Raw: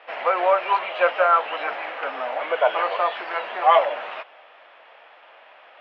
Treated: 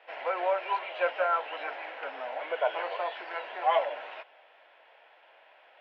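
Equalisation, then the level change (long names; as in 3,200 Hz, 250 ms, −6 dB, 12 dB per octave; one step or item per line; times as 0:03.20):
high-pass filter 250 Hz 24 dB per octave
notch filter 1,200 Hz, Q 6.1
−8.5 dB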